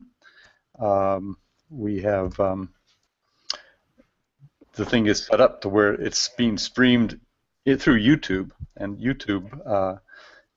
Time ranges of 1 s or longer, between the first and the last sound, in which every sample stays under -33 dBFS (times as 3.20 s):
3.55–4.77 s